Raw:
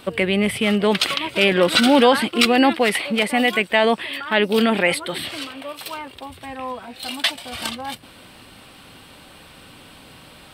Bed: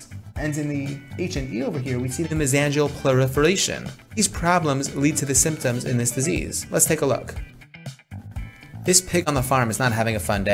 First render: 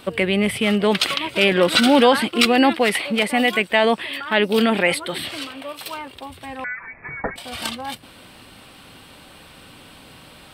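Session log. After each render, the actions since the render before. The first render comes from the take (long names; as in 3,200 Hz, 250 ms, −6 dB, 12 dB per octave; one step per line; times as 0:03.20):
0:06.64–0:07.36: voice inversion scrambler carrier 2,500 Hz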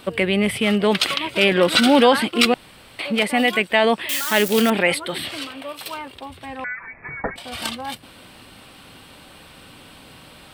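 0:02.54–0:02.99: fill with room tone
0:04.09–0:04.70: spike at every zero crossing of −15 dBFS
0:06.17–0:07.52: high-shelf EQ 7,400 Hz −6 dB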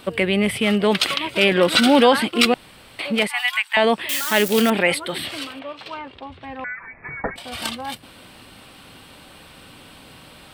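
0:03.27–0:03.77: elliptic high-pass filter 850 Hz
0:05.59–0:07.04: high-frequency loss of the air 170 metres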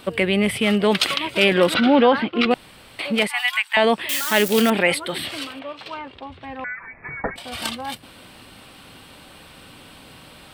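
0:01.74–0:02.51: high-frequency loss of the air 320 metres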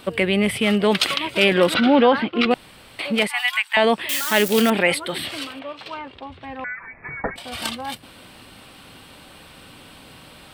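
no processing that can be heard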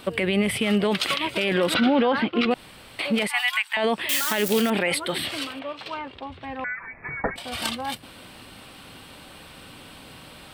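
brickwall limiter −12 dBFS, peak gain reduction 10 dB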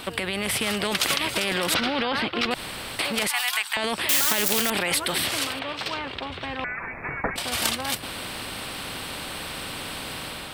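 automatic gain control gain up to 5.5 dB
every bin compressed towards the loudest bin 2 to 1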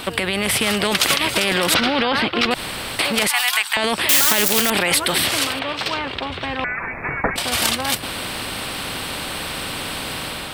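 level +6.5 dB
brickwall limiter −3 dBFS, peak gain reduction 2.5 dB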